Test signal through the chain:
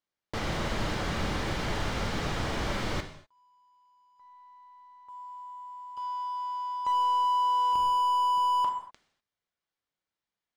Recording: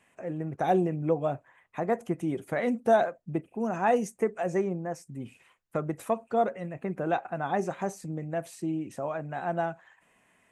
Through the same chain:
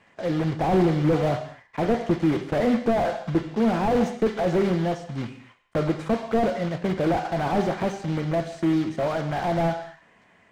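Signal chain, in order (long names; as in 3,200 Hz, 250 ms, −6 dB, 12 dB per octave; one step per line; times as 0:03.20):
one scale factor per block 3 bits
notch filter 2,600 Hz, Q 17
in parallel at −6 dB: gain into a clipping stage and back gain 27 dB
on the sum: high-frequency loss of the air 140 metres
reverb whose tail is shaped and stops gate 270 ms falling, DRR 7.5 dB
slew-rate limiting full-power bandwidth 34 Hz
level +5 dB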